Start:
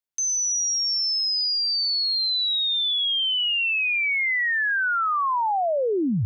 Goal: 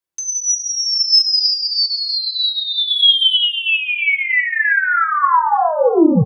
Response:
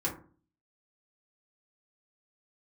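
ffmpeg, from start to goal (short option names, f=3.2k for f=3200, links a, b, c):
-filter_complex "[0:a]asettb=1/sr,asplit=3[a][b][c];[a]atrim=end=0.864[d];[b]atrim=start=0.86:end=1.54,asetpts=PTS-STARTPTS,afade=t=in:d=0.004:c=qsin,afade=t=out:st=0.676:d=0.004:c=qsin,highshelf=f=5.3k:g=10.5[e];[c]atrim=start=1.536[f];[d][e]acrossfade=d=0.004:c1=hsin:c2=qsin[g];[g][f]acrossfade=d=0.004:c1=qsin:c2=hsin,asplit=3[h][i][j];[h]afade=t=out:st=2.87:d=0.02[k];[i]acontrast=82,afade=t=in:st=2.87:d=0.02,afade=t=out:st=3.37:d=0.02[l];[j]afade=t=in:st=3.37:d=0.02[m];[k][l][m]amix=inputs=3:normalize=0,asettb=1/sr,asplit=3[n][o][p];[n]atrim=end=4.094[q];[o]atrim=start=4.09:end=4.67,asetpts=PTS-STARTPTS,afade=t=in:d=0.004:c=qsin,afade=t=out:st=0.576:d=0.004:c=qsin,highpass=160[r];[p]atrim=start=4.666[s];[q][r]acrossfade=d=0.004:c1=hsin:c2=qsin[t];[t][s]acrossfade=d=0.004:c1=qsin:c2=hsin,aecho=1:1:319|638|957:0.282|0.0817|0.0237[u];[1:a]atrim=start_sample=2205,afade=t=out:st=0.16:d=0.01,atrim=end_sample=7497[v];[u][v]afir=irnorm=-1:irlink=0,volume=1.5dB"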